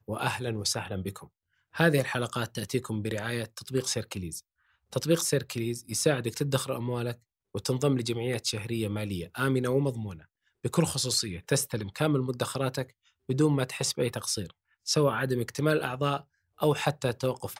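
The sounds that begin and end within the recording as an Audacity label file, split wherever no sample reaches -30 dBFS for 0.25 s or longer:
1.770000	4.370000	sound
4.930000	7.120000	sound
7.550000	10.100000	sound
10.650000	12.830000	sound
13.290000	14.460000	sound
14.880000	16.170000	sound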